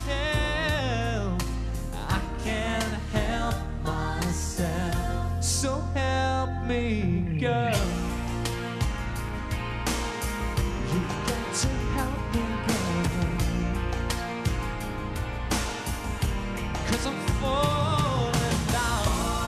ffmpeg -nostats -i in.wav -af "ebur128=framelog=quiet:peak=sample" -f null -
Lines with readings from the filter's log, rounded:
Integrated loudness:
  I:         -28.0 LUFS
  Threshold: -38.0 LUFS
Loudness range:
  LRA:         3.0 LU
  Threshold: -48.3 LUFS
  LRA low:   -29.8 LUFS
  LRA high:  -26.8 LUFS
Sample peak:
  Peak:      -11.3 dBFS